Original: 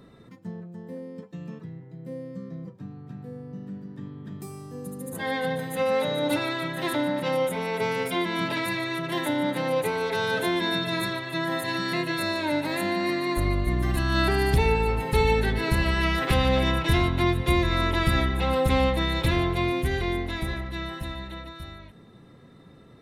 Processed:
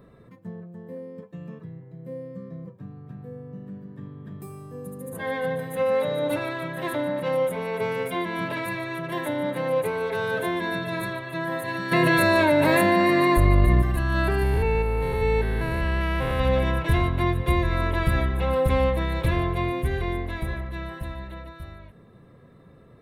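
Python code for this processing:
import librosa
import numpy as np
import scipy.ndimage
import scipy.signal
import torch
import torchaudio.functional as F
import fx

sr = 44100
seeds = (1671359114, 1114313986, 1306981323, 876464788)

y = fx.env_flatten(x, sr, amount_pct=100, at=(11.91, 13.81), fade=0.02)
y = fx.spec_steps(y, sr, hold_ms=200, at=(14.43, 16.4))
y = fx.peak_eq(y, sr, hz=5400.0, db=-11.0, octaves=1.6)
y = y + 0.32 * np.pad(y, (int(1.8 * sr / 1000.0), 0))[:len(y)]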